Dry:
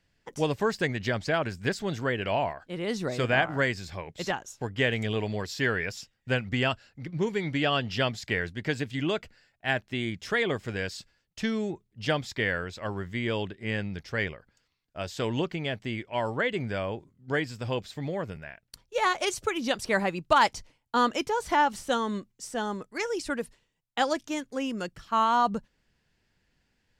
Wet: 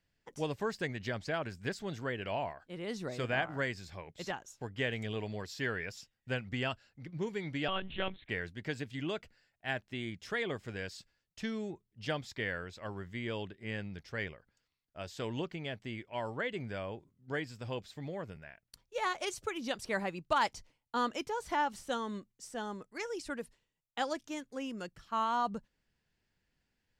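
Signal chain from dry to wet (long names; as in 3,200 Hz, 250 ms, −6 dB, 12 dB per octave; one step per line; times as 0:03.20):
0:07.68–0:08.29: one-pitch LPC vocoder at 8 kHz 190 Hz
level −8.5 dB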